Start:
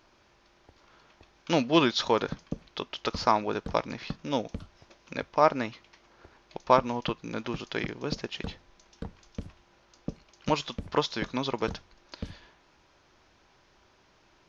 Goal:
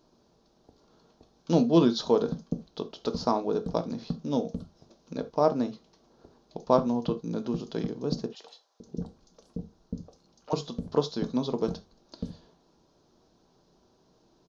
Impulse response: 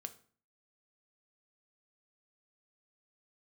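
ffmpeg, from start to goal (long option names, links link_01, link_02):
-filter_complex "[0:a]firequalizer=gain_entry='entry(110,0);entry(160,9);entry(2100,-16);entry(4000,1)':delay=0.05:min_phase=1,asettb=1/sr,asplit=3[link_01][link_02][link_03];[link_01]atrim=end=8.264[link_04];[link_02]atrim=start=8.26:end=10.53,asetpts=PTS-STARTPTS,afade=type=in:duration=0.004:curve=qsin,afade=type=out:start_time=2.266:duration=0.004:curve=qsin,acrossover=split=630|2600[link_05][link_06][link_07];[link_07]adelay=40[link_08];[link_05]adelay=540[link_09];[link_09][link_06][link_08]amix=inputs=3:normalize=0,atrim=end_sample=100107[link_10];[link_03]atrim=start=10.526[link_11];[link_04][link_10]acrossfade=duration=0.004:curve1=hsin:curve2=qsin[link_12];[link_12][link_11]acrossfade=duration=0.004:curve1=qsin:curve2=hsin[link_13];[1:a]atrim=start_sample=2205,atrim=end_sample=3969[link_14];[link_13][link_14]afir=irnorm=-1:irlink=0"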